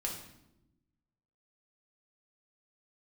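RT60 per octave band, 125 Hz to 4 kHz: 1.5, 1.4, 1.1, 0.80, 0.70, 0.65 seconds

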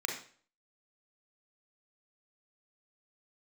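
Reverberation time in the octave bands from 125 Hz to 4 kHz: 0.50, 0.45, 0.45, 0.45, 0.45, 0.40 seconds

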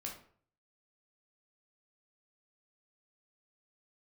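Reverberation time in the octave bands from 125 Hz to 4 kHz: 0.70, 0.55, 0.55, 0.50, 0.45, 0.35 seconds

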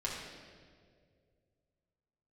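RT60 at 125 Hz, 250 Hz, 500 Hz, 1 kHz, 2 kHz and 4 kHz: 3.0, 2.4, 2.6, 1.6, 1.5, 1.4 seconds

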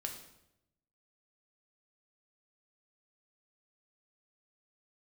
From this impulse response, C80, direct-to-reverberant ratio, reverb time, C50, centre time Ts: 9.5 dB, 2.5 dB, 0.85 s, 7.0 dB, 24 ms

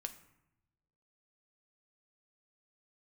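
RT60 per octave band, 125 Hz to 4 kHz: 1.4, 1.2, 0.85, 0.85, 0.75, 0.50 seconds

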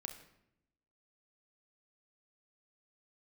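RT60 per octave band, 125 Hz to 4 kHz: 1.1, 1.1, 0.85, 0.75, 0.70, 0.60 seconds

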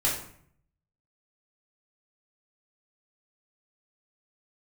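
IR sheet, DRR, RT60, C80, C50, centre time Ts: −8.0 dB, 0.60 s, 8.5 dB, 4.5 dB, 37 ms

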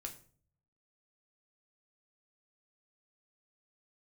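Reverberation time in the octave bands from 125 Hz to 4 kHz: 1.0, 0.65, 0.50, 0.40, 0.35, 0.35 seconds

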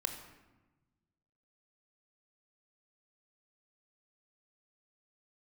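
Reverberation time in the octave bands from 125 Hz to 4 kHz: 1.9, 1.6, 1.1, 1.1, 1.0, 0.70 seconds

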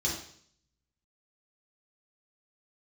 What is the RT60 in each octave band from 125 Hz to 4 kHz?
0.85, 0.65, 0.60, 0.55, 0.60, 0.65 seconds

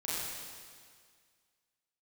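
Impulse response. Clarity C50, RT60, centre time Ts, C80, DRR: −3.5 dB, 1.9 s, 140 ms, −1.5 dB, −9.5 dB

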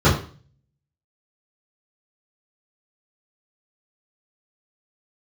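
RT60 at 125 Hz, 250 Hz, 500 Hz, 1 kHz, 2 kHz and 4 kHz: 0.65, 0.50, 0.45, 0.40, 0.40, 0.40 seconds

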